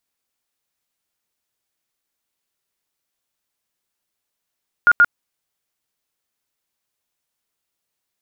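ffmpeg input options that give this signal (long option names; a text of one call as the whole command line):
ffmpeg -f lavfi -i "aevalsrc='0.422*sin(2*PI*1420*mod(t,0.13))*lt(mod(t,0.13),65/1420)':duration=0.26:sample_rate=44100" out.wav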